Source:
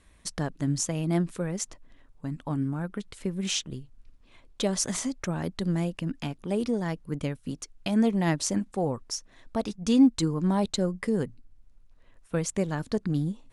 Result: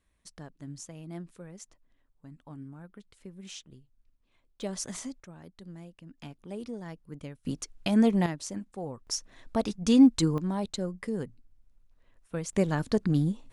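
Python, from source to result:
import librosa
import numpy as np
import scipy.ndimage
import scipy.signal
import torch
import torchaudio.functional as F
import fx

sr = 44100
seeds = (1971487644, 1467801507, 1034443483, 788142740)

y = fx.gain(x, sr, db=fx.steps((0.0, -15.0), (4.62, -8.0), (5.2, -18.0), (6.18, -11.0), (7.45, 1.0), (8.26, -9.5), (9.07, 1.0), (10.38, -6.0), (12.53, 2.0)))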